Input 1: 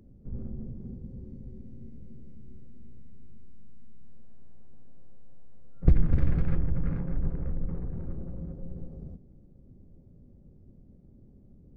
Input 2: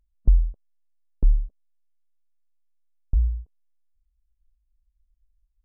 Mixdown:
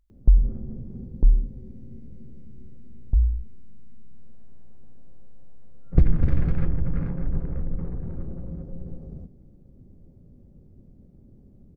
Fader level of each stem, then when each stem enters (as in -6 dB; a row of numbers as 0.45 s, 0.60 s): +3.0 dB, +1.5 dB; 0.10 s, 0.00 s